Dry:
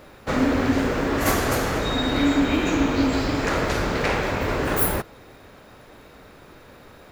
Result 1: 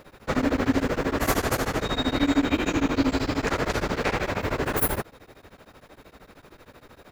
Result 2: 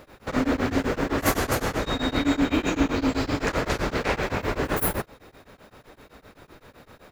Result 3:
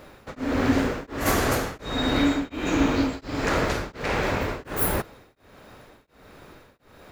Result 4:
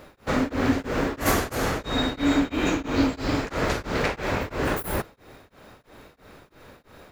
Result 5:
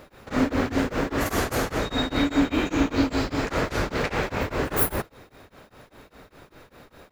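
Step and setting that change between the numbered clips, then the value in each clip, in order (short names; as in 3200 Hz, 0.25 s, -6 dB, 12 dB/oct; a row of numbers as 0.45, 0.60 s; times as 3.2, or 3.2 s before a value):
beating tremolo, nulls at: 13, 7.8, 1.4, 3, 5 Hz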